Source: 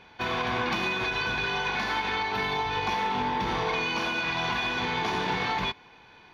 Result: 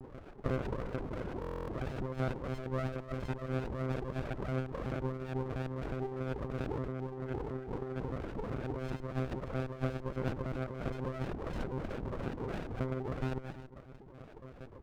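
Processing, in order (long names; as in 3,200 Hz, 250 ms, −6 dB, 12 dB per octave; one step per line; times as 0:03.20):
low-shelf EQ 400 Hz −8.5 dB
brickwall limiter −26.5 dBFS, peak gain reduction 9 dB
high-frequency loss of the air 120 metres
delay with a high-pass on its return 62 ms, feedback 57%, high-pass 1,700 Hz, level −5 dB
wrong playback speed 78 rpm record played at 33 rpm
one-pitch LPC vocoder at 8 kHz 130 Hz
compressor whose output falls as the input rises −39 dBFS, ratio −1
reverb reduction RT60 1.5 s
auto-filter low-pass saw up 3 Hz 340–2,000 Hz
buffer that repeats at 0:01.40, samples 1,024, times 11
windowed peak hold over 33 samples
level +3 dB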